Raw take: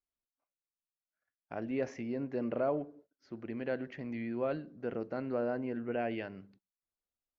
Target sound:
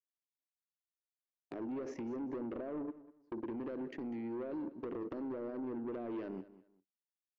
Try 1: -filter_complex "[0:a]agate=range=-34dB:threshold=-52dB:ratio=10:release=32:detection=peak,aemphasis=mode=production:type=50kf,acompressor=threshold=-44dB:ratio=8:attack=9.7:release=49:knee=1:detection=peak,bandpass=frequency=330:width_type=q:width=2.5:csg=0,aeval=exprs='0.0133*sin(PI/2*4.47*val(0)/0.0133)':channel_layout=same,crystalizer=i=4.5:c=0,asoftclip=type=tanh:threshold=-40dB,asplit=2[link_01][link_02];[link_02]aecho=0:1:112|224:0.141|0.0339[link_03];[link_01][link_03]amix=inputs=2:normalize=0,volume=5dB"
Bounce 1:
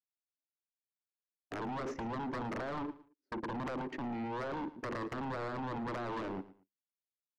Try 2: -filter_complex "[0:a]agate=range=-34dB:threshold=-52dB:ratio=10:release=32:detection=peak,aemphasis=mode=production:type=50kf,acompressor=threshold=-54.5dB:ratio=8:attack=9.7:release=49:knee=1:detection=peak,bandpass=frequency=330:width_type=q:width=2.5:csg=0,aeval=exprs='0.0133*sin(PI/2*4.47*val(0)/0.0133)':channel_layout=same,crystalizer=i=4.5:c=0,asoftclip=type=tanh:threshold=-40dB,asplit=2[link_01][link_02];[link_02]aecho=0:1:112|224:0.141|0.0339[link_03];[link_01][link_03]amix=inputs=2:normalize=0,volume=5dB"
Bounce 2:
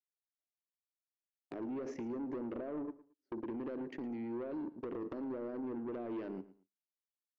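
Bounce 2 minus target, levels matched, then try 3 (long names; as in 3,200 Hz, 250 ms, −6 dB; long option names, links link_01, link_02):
echo 85 ms early
-filter_complex "[0:a]agate=range=-34dB:threshold=-52dB:ratio=10:release=32:detection=peak,aemphasis=mode=production:type=50kf,acompressor=threshold=-54.5dB:ratio=8:attack=9.7:release=49:knee=1:detection=peak,bandpass=frequency=330:width_type=q:width=2.5:csg=0,aeval=exprs='0.0133*sin(PI/2*4.47*val(0)/0.0133)':channel_layout=same,crystalizer=i=4.5:c=0,asoftclip=type=tanh:threshold=-40dB,asplit=2[link_01][link_02];[link_02]aecho=0:1:197|394:0.141|0.0339[link_03];[link_01][link_03]amix=inputs=2:normalize=0,volume=5dB"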